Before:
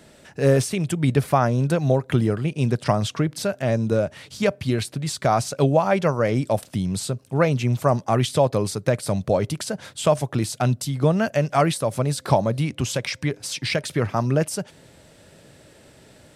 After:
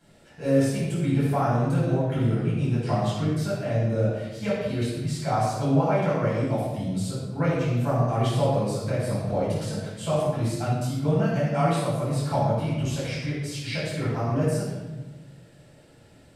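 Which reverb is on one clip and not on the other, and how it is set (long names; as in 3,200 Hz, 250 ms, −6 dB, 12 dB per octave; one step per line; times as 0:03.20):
rectangular room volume 720 cubic metres, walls mixed, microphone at 7.8 metres
level −19.5 dB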